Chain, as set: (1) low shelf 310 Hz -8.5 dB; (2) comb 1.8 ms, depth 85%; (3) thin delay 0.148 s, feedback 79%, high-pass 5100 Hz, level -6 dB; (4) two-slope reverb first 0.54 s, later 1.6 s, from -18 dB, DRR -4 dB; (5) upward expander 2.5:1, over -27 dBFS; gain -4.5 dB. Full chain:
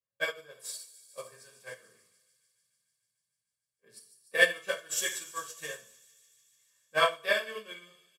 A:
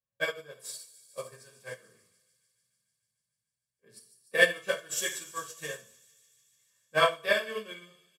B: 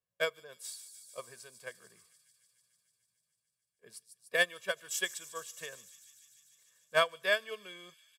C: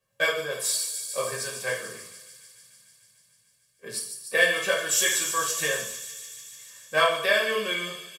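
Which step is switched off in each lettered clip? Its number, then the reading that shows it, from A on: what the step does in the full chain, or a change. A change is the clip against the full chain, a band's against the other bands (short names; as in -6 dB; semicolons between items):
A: 1, 125 Hz band +6.5 dB; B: 4, crest factor change -2.5 dB; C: 5, 8 kHz band +4.5 dB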